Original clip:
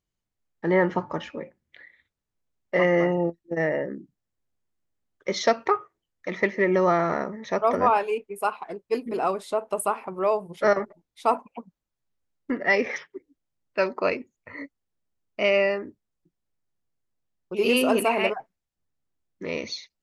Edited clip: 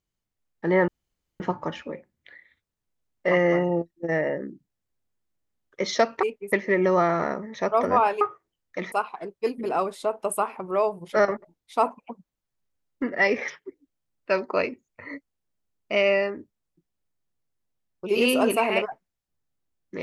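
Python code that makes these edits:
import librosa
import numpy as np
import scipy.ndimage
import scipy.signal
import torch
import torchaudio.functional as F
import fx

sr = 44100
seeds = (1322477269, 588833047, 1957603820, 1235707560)

y = fx.edit(x, sr, fx.insert_room_tone(at_s=0.88, length_s=0.52),
    fx.swap(start_s=5.71, length_s=0.71, other_s=8.11, other_length_s=0.29), tone=tone)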